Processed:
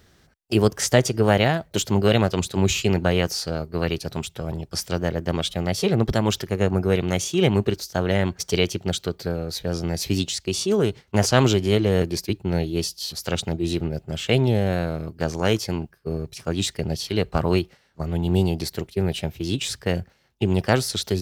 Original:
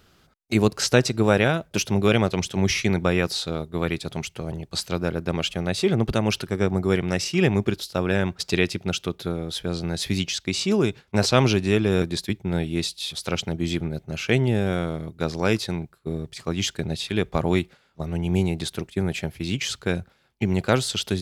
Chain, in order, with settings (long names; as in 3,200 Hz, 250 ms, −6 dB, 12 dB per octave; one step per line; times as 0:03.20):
parametric band 71 Hz +5 dB 1.6 octaves
formants moved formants +3 semitones